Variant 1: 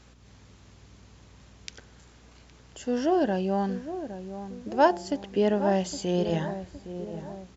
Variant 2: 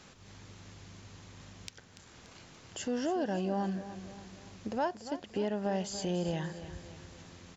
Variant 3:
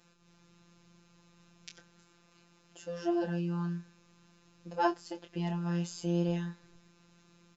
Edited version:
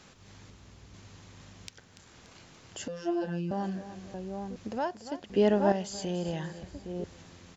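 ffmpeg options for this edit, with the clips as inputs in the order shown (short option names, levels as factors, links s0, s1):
-filter_complex "[0:a]asplit=4[s0][s1][s2][s3];[1:a]asplit=6[s4][s5][s6][s7][s8][s9];[s4]atrim=end=0.502[s10];[s0]atrim=start=0.498:end=0.942[s11];[s5]atrim=start=0.938:end=2.882[s12];[2:a]atrim=start=2.878:end=3.512[s13];[s6]atrim=start=3.508:end=4.142[s14];[s1]atrim=start=4.138:end=4.562[s15];[s7]atrim=start=4.558:end=5.302[s16];[s2]atrim=start=5.298:end=5.722[s17];[s8]atrim=start=5.718:end=6.632[s18];[s3]atrim=start=6.628:end=7.042[s19];[s9]atrim=start=7.038[s20];[s10][s11]acrossfade=d=0.004:c1=hsin:c2=hsin[s21];[s21][s12]acrossfade=d=0.004:c1=hsin:c2=hsin[s22];[s22][s13]acrossfade=d=0.004:c1=hsin:c2=hsin[s23];[s23][s14]acrossfade=d=0.004:c1=hsin:c2=hsin[s24];[s24][s15]acrossfade=d=0.004:c1=hsin:c2=hsin[s25];[s25][s16]acrossfade=d=0.004:c1=hsin:c2=hsin[s26];[s26][s17]acrossfade=d=0.004:c1=hsin:c2=hsin[s27];[s27][s18]acrossfade=d=0.004:c1=hsin:c2=hsin[s28];[s28][s19]acrossfade=d=0.004:c1=hsin:c2=hsin[s29];[s29][s20]acrossfade=d=0.004:c1=hsin:c2=hsin"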